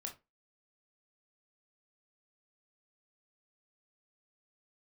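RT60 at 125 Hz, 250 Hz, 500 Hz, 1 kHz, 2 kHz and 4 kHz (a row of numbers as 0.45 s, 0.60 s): 0.20 s, 0.25 s, 0.25 s, 0.20 s, 0.20 s, 0.15 s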